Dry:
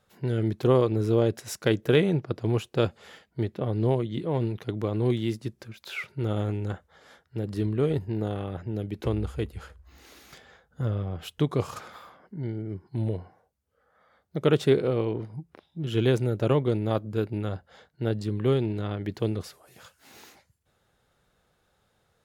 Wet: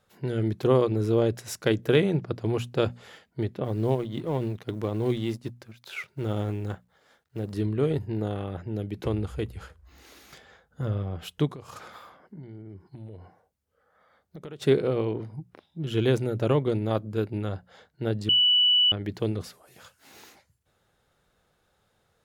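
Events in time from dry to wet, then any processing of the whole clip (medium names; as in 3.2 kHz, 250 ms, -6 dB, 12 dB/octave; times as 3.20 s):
3.64–7.53 s: companding laws mixed up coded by A
11.47–14.62 s: compression, threshold -38 dBFS
18.29–18.92 s: bleep 2.96 kHz -17 dBFS
whole clip: hum notches 60/120/180/240 Hz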